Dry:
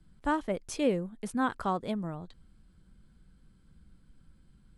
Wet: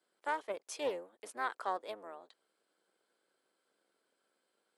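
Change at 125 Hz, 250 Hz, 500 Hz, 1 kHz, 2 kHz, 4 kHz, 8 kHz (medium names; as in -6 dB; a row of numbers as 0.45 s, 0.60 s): under -25 dB, -21.0 dB, -6.5 dB, -4.5 dB, -3.5 dB, -4.5 dB, -5.0 dB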